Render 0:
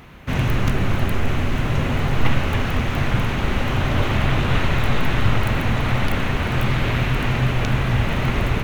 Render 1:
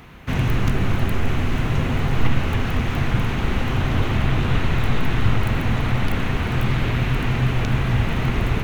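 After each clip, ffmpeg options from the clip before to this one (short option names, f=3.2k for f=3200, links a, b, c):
-filter_complex "[0:a]bandreject=f=580:w=13,acrossover=split=410[a][b];[b]acompressor=threshold=-28dB:ratio=2.5[c];[a][c]amix=inputs=2:normalize=0"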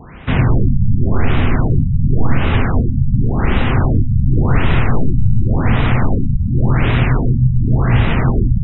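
-af "alimiter=level_in=8.5dB:limit=-1dB:release=50:level=0:latency=1,afftfilt=real='re*lt(b*sr/1024,210*pow(4000/210,0.5+0.5*sin(2*PI*0.9*pts/sr)))':imag='im*lt(b*sr/1024,210*pow(4000/210,0.5+0.5*sin(2*PI*0.9*pts/sr)))':win_size=1024:overlap=0.75,volume=-1dB"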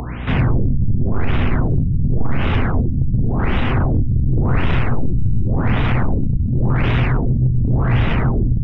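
-af "acompressor=mode=upward:threshold=-21dB:ratio=2.5,aeval=exprs='val(0)+0.0501*(sin(2*PI*60*n/s)+sin(2*PI*2*60*n/s)/2+sin(2*PI*3*60*n/s)/3+sin(2*PI*4*60*n/s)/4+sin(2*PI*5*60*n/s)/5)':c=same,acontrast=55,volume=-7dB"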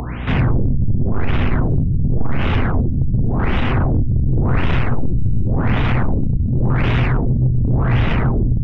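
-af "aeval=exprs='0.447*(cos(1*acos(clip(val(0)/0.447,-1,1)))-cos(1*PI/2))+0.0141*(cos(5*acos(clip(val(0)/0.447,-1,1)))-cos(5*PI/2))':c=same"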